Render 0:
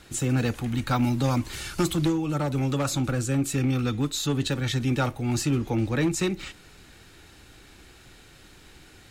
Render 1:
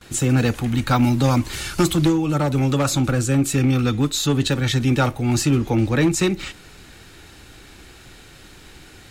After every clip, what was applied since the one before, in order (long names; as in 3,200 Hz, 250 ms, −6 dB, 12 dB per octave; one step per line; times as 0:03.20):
noise gate with hold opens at −42 dBFS
level +6.5 dB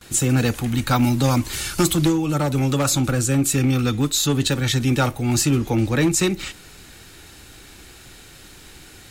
high-shelf EQ 6,000 Hz +8.5 dB
level −1 dB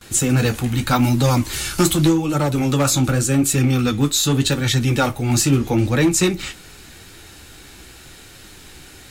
flanger 0.83 Hz, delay 8.5 ms, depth 7.9 ms, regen −45%
level +6 dB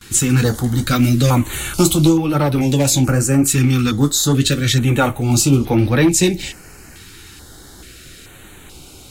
notch on a step sequencer 2.3 Hz 620–7,200 Hz
level +3 dB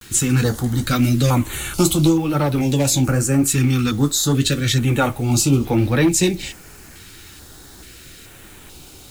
bit reduction 7 bits
level −2.5 dB